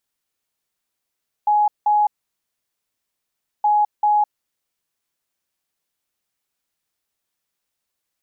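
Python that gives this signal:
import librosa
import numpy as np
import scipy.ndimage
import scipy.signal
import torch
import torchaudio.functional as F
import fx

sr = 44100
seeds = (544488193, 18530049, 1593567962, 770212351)

y = fx.beep_pattern(sr, wave='sine', hz=837.0, on_s=0.21, off_s=0.18, beeps=2, pause_s=1.57, groups=2, level_db=-13.0)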